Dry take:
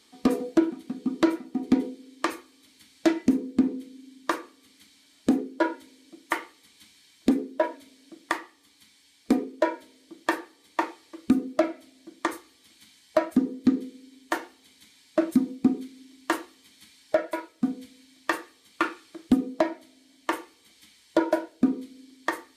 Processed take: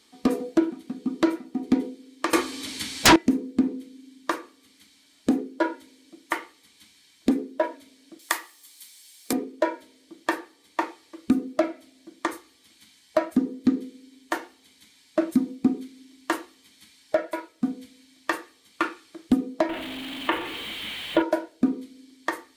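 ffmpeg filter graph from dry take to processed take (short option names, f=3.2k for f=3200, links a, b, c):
-filter_complex "[0:a]asettb=1/sr,asplit=3[a][b][c];[a]atrim=end=2.334[d];[b]atrim=start=2.33:end=3.16,asetpts=PTS-STARTPTS,afade=t=in:d=0.004:c=qsin,afade=t=out:st=0.826:d=0.004:c=qsin,lowpass=11k,aeval=exprs='0.335*sin(PI/2*8.91*val(0)/0.335)':c=same[e];[c]atrim=start=3.156[f];[d][e]acrossfade=d=0.004:c1=hsin:c2=qsin[g];[g][f]acrossfade=d=0.004:c1=qsin:c2=hsin,asettb=1/sr,asplit=3[h][i][j];[h]atrim=end=8.194[k];[i]atrim=start=8.19:end=9.33,asetpts=PTS-STARTPTS,afade=t=in:d=0.004:c=qsin,afade=t=out:st=1.136:d=0.004:c=qsin,highpass=f=230:p=1,aemphasis=mode=production:type=riaa[l];[j]atrim=start=9.326[m];[k][l]acrossfade=d=0.004:c1=hsin:c2=qsin[n];[n][m]acrossfade=d=0.004:c1=qsin:c2=hsin,asettb=1/sr,asplit=3[o][p][q];[o]atrim=end=19.694[r];[p]atrim=start=19.69:end=21.22,asetpts=PTS-STARTPTS,afade=t=in:d=0.004:c=qsin,afade=t=out:st=1.526:d=0.004:c=qsin,aeval=exprs='val(0)+0.5*0.0335*sgn(val(0))':c=same,highshelf=f=4.1k:t=q:w=3:g=-10[s];[q]atrim=start=21.216[t];[r][s]acrossfade=d=0.004:c1=hsin:c2=qsin[u];[u][t]acrossfade=d=0.004:c1=qsin:c2=hsin"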